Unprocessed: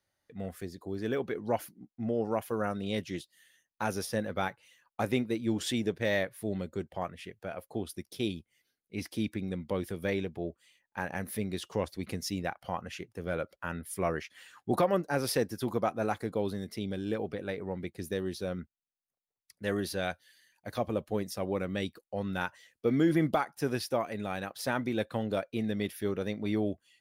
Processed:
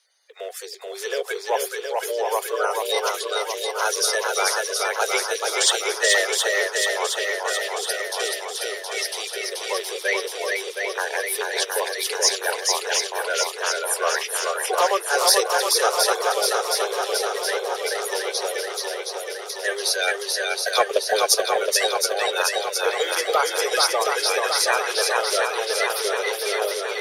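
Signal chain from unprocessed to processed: bin magnitudes rounded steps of 30 dB; steep high-pass 400 Hz 96 dB/oct; bell 6000 Hz +13.5 dB 2.6 oct; soft clip -11 dBFS, distortion -31 dB; 20.05–21.49 transient shaper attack +9 dB, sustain -3 dB; swung echo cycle 0.719 s, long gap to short 1.5:1, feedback 63%, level -3 dB; gain +7.5 dB

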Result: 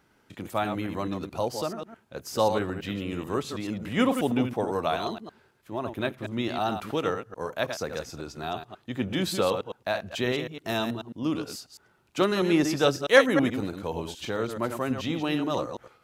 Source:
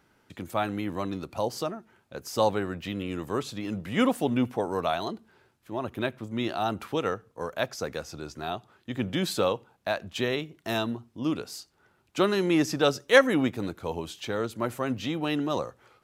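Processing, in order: reverse delay 0.108 s, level -7 dB

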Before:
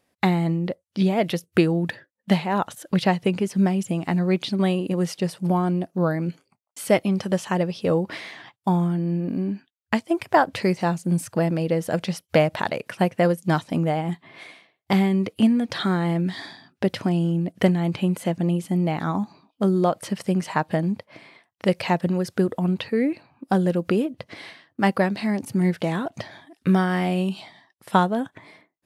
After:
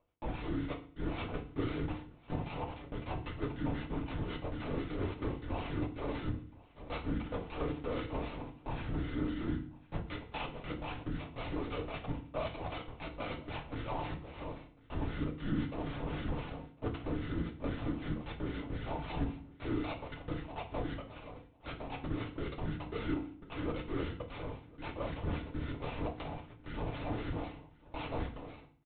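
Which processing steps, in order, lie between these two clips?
HPF 230 Hz 12 dB/oct; reverse; compressor 6:1, threshold -35 dBFS, peak gain reduction 21.5 dB; reverse; sample-rate reducer 1700 Hz, jitter 20%; overloaded stage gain 31 dB; harmonic tremolo 3.8 Hz, crossover 1200 Hz; LPC vocoder at 8 kHz whisper; on a send: echo 1.05 s -23 dB; on the sum: FDN reverb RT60 0.45 s, low-frequency decay 1.55×, high-frequency decay 0.95×, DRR 2.5 dB; gain +1.5 dB

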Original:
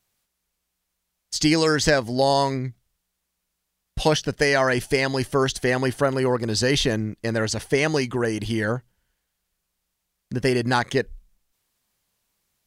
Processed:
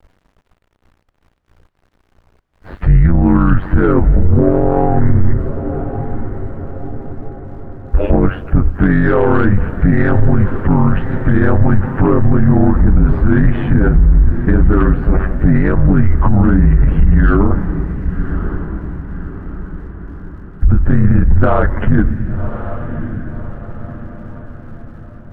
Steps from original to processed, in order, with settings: time stretch by phase-locked vocoder 2×; in parallel at -3.5 dB: one-sided clip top -26 dBFS; on the sum: bell 180 Hz +15 dB 0.21 oct; compressor 5:1, threshold -24 dBFS, peak gain reduction 14 dB; mistuned SSB -210 Hz 190–2000 Hz; sine folder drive 3 dB, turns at -15 dBFS; bit-crush 11-bit; ring modulator 47 Hz; tilt -2.5 dB/oct; diffused feedback echo 1.126 s, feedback 47%, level -15 dB; on a send at -20 dB: reverb, pre-delay 3 ms; on the sum: maximiser +14.5 dB; gain -1 dB

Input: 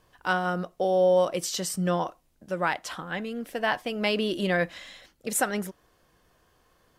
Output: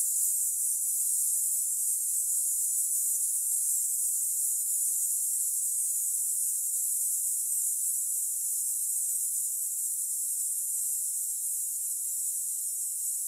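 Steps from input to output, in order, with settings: Paulstretch 37×, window 0.50 s, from 5.29; limiter -21 dBFS, peak gain reduction 7.5 dB; plain phase-vocoder stretch 1.9×; inverse Chebyshev high-pass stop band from 1200 Hz, stop band 80 dB; cascading phaser falling 0.91 Hz; gain +8.5 dB

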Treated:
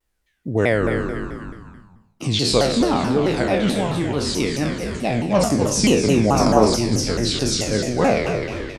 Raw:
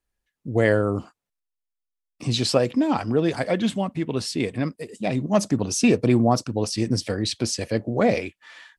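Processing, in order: spectral trails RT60 0.72 s; frequency-shifting echo 0.255 s, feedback 38%, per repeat -75 Hz, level -7.5 dB; in parallel at +1.5 dB: compressor, threshold -31 dBFS, peak gain reduction 18.5 dB; on the sum: spectral gain 6.4–6.75, 210–2000 Hz +8 dB; shaped vibrato saw down 4.6 Hz, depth 250 cents; gain -1.5 dB

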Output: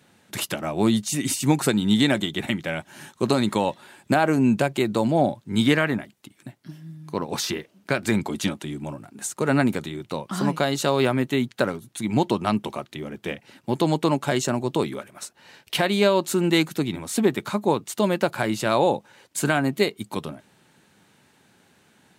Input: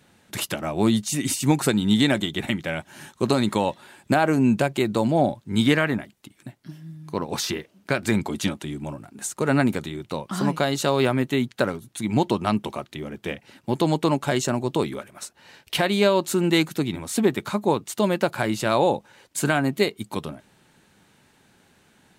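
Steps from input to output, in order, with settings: HPF 89 Hz

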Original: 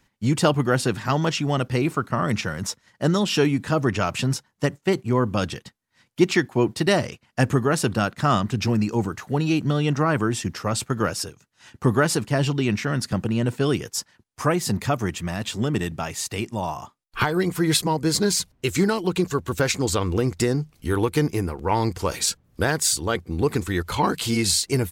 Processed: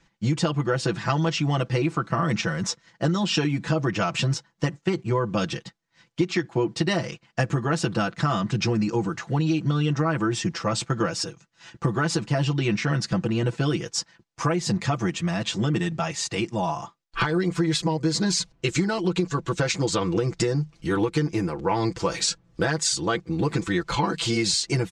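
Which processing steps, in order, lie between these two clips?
LPF 7300 Hz 24 dB/oct; comb 6 ms, depth 82%; compressor 12:1, threshold -19 dBFS, peak gain reduction 12.5 dB

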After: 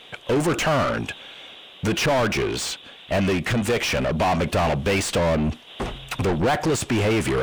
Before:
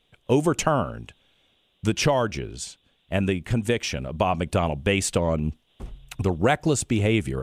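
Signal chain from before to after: soft clip -19 dBFS, distortion -11 dB; overdrive pedal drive 29 dB, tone 3000 Hz, clips at -19 dBFS; gain +3.5 dB

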